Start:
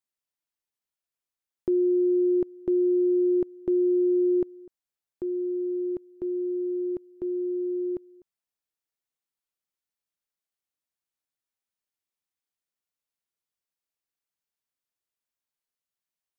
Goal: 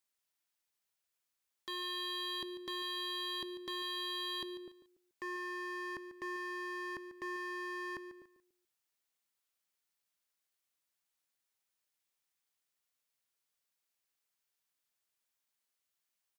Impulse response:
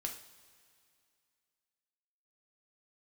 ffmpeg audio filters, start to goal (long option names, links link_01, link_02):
-filter_complex "[0:a]tiltshelf=frequency=650:gain=-3.5,aeval=exprs='0.0126*(abs(mod(val(0)/0.0126+3,4)-2)-1)':channel_layout=same,asplit=2[link_01][link_02];[link_02]aecho=0:1:144|288|432:0.237|0.0711|0.0213[link_03];[link_01][link_03]amix=inputs=2:normalize=0,volume=1.5dB"